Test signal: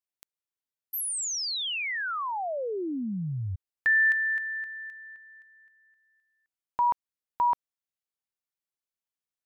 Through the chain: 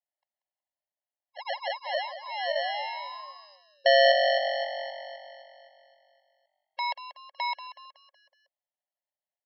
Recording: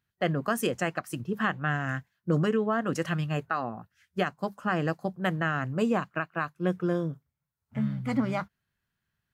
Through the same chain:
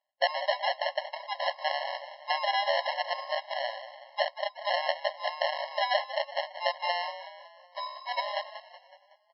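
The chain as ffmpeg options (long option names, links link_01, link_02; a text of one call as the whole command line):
ffmpeg -i in.wav -filter_complex "[0:a]aresample=11025,acrusher=samples=9:mix=1:aa=0.000001,aresample=44100,asplit=6[link_01][link_02][link_03][link_04][link_05][link_06];[link_02]adelay=186,afreqshift=47,volume=-12.5dB[link_07];[link_03]adelay=372,afreqshift=94,volume=-18.9dB[link_08];[link_04]adelay=558,afreqshift=141,volume=-25.3dB[link_09];[link_05]adelay=744,afreqshift=188,volume=-31.6dB[link_10];[link_06]adelay=930,afreqshift=235,volume=-38dB[link_11];[link_01][link_07][link_08][link_09][link_10][link_11]amix=inputs=6:normalize=0,afftfilt=real='re*eq(mod(floor(b*sr/1024/550),2),1)':imag='im*eq(mod(floor(b*sr/1024/550),2),1)':win_size=1024:overlap=0.75,volume=4.5dB" out.wav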